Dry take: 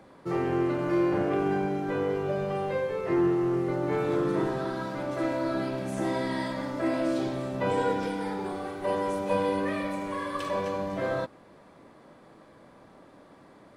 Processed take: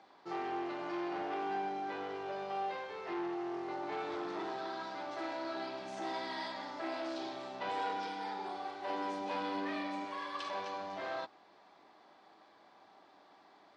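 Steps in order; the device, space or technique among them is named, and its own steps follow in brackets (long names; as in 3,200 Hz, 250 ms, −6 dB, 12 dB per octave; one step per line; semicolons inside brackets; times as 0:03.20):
guitar amplifier (tube saturation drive 24 dB, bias 0.3; bass and treble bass −12 dB, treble +15 dB; loudspeaker in its box 100–4,600 Hz, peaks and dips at 140 Hz −10 dB, 250 Hz −5 dB, 520 Hz −10 dB, 780 Hz +8 dB)
0:08.89–0:10.05: parametric band 260 Hz +11 dB 0.59 octaves
level −6 dB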